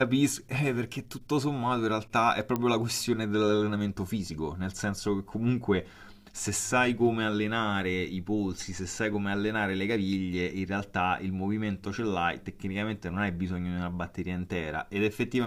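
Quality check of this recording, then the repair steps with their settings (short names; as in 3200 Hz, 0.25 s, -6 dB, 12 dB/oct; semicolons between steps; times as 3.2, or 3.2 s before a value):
2.56 pop -16 dBFS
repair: de-click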